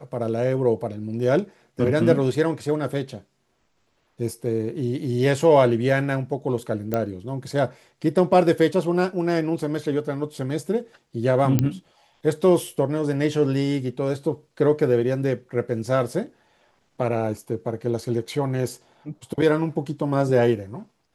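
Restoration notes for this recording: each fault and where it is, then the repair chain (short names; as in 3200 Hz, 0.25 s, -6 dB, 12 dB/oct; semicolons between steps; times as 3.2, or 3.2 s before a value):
6.94 pop -11 dBFS
11.59 pop -7 dBFS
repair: de-click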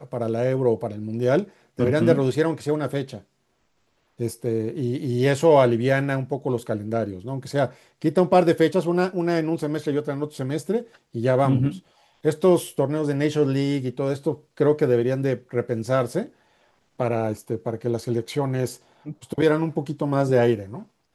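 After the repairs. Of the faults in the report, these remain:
none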